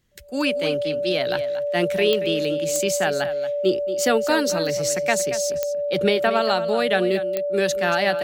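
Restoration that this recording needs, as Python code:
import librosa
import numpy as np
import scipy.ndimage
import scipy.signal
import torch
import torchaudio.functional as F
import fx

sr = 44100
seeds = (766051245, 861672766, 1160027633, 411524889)

y = fx.fix_declick_ar(x, sr, threshold=10.0)
y = fx.notch(y, sr, hz=580.0, q=30.0)
y = fx.fix_echo_inverse(y, sr, delay_ms=230, level_db=-12.5)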